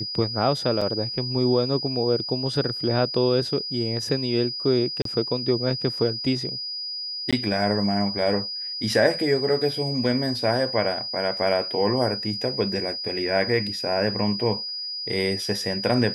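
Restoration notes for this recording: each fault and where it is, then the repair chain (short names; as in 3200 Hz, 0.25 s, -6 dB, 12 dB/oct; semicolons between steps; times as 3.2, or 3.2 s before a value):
tone 4900 Hz -29 dBFS
0.81–0.82 gap 5.1 ms
5.02–5.05 gap 33 ms
7.31–7.33 gap 16 ms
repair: notch 4900 Hz, Q 30; interpolate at 0.81, 5.1 ms; interpolate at 5.02, 33 ms; interpolate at 7.31, 16 ms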